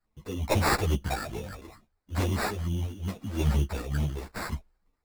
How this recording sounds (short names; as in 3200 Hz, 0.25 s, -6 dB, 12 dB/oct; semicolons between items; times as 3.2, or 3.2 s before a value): phasing stages 4, 2.3 Hz, lowest notch 130–1400 Hz; aliases and images of a low sample rate 3100 Hz, jitter 0%; random-step tremolo 2.1 Hz, depth 55%; a shimmering, thickened sound